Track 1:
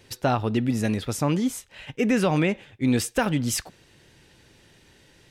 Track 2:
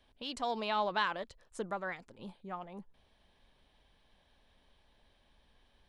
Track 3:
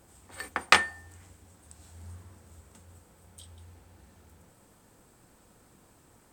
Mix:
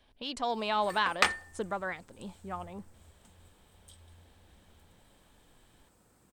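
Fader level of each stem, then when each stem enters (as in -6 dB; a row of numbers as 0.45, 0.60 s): off, +3.0 dB, -6.0 dB; off, 0.00 s, 0.50 s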